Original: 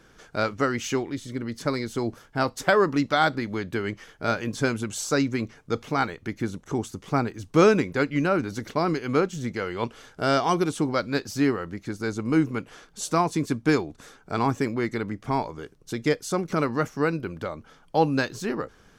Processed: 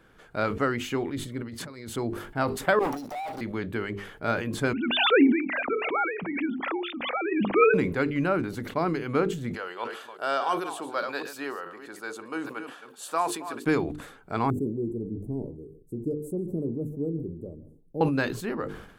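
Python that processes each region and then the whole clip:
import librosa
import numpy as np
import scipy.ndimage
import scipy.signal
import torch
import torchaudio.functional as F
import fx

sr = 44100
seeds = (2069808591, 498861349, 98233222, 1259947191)

y = fx.chain(x, sr, fx.highpass(hz=50.0, slope=12),
    fx.over_compress(threshold_db=-38.0, ratio=-1.0),
    fx.peak_eq(hz=6000.0, db=4.5, octaves=1.8), at=(1.42, 1.96))
y = fx.chain(y, sr, fx.over_compress(threshold_db=-26.0, ratio=-0.5),
    fx.double_bandpass(hz=2100.0, octaves=2.9),
    fx.leveller(passes=5), at=(2.79, 3.41))
y = fx.chain(y, sr, fx.sine_speech(),
    fx.peak_eq(hz=2400.0, db=7.0, octaves=0.27),
    fx.pre_swell(db_per_s=30.0), at=(4.73, 7.74))
y = fx.chain(y, sr, fx.reverse_delay(ms=211, wet_db=-11.5),
    fx.highpass(hz=600.0, slope=12),
    fx.notch(hz=2100.0, q=6.4), at=(9.54, 13.66))
y = fx.chain(y, sr, fx.cheby1_bandstop(low_hz=410.0, high_hz=8600.0, order=3),
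    fx.peak_eq(hz=8300.0, db=-10.0, octaves=2.8),
    fx.echo_single(ms=143, db=-19.5), at=(14.5, 18.01))
y = fx.peak_eq(y, sr, hz=5800.0, db=-13.5, octaves=0.74)
y = fx.hum_notches(y, sr, base_hz=50, count=9)
y = fx.sustainer(y, sr, db_per_s=73.0)
y = F.gain(torch.from_numpy(y), -2.0).numpy()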